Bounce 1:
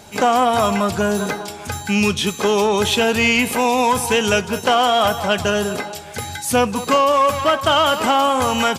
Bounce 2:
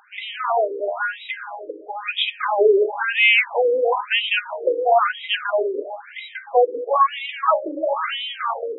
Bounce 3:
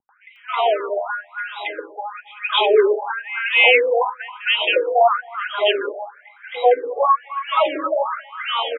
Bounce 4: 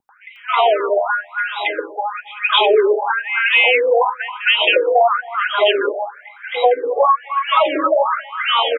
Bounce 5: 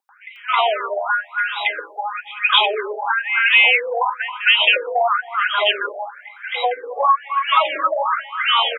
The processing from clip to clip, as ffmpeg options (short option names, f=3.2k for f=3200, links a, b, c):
-filter_complex "[0:a]bandreject=f=51.02:t=h:w=4,bandreject=f=102.04:t=h:w=4,bandreject=f=153.06:t=h:w=4,bandreject=f=204.08:t=h:w=4,bandreject=f=255.1:t=h:w=4,bandreject=f=306.12:t=h:w=4,bandreject=f=357.14:t=h:w=4,bandreject=f=408.16:t=h:w=4,bandreject=f=459.18:t=h:w=4,bandreject=f=510.2:t=h:w=4,bandreject=f=561.22:t=h:w=4,bandreject=f=612.24:t=h:w=4,bandreject=f=663.26:t=h:w=4,bandreject=f=714.28:t=h:w=4,bandreject=f=765.3:t=h:w=4,bandreject=f=816.32:t=h:w=4,bandreject=f=867.34:t=h:w=4,bandreject=f=918.36:t=h:w=4,bandreject=f=969.38:t=h:w=4,bandreject=f=1.0204k:t=h:w=4,bandreject=f=1.07142k:t=h:w=4,bandreject=f=1.12244k:t=h:w=4,bandreject=f=1.17346k:t=h:w=4,bandreject=f=1.22448k:t=h:w=4,bandreject=f=1.2755k:t=h:w=4,bandreject=f=1.32652k:t=h:w=4,bandreject=f=1.37754k:t=h:w=4,bandreject=f=1.42856k:t=h:w=4,bandreject=f=1.47958k:t=h:w=4,bandreject=f=1.5306k:t=h:w=4,bandreject=f=1.58162k:t=h:w=4,bandreject=f=1.63264k:t=h:w=4,bandreject=f=1.68366k:t=h:w=4,acrossover=split=2800[a][b];[a]dynaudnorm=f=100:g=17:m=10dB[c];[c][b]amix=inputs=2:normalize=0,afftfilt=real='re*between(b*sr/1024,390*pow(2800/390,0.5+0.5*sin(2*PI*1*pts/sr))/1.41,390*pow(2800/390,0.5+0.5*sin(2*PI*1*pts/sr))*1.41)':imag='im*between(b*sr/1024,390*pow(2800/390,0.5+0.5*sin(2*PI*1*pts/sr))/1.41,390*pow(2800/390,0.5+0.5*sin(2*PI*1*pts/sr))*1.41)':win_size=1024:overlap=0.75"
-filter_complex "[0:a]acrossover=split=310|1500[a][b][c];[b]adelay=90[d];[c]adelay=360[e];[a][d][e]amix=inputs=3:normalize=0,volume=2.5dB"
-af "acompressor=threshold=-17dB:ratio=6,volume=7dB"
-af "highpass=910,volume=1dB"